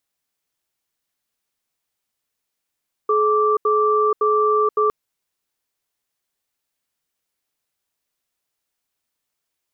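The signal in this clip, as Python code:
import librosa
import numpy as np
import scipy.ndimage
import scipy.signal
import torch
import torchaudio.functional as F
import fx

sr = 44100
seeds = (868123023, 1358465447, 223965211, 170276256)

y = fx.cadence(sr, length_s=1.81, low_hz=426.0, high_hz=1170.0, on_s=0.48, off_s=0.08, level_db=-17.0)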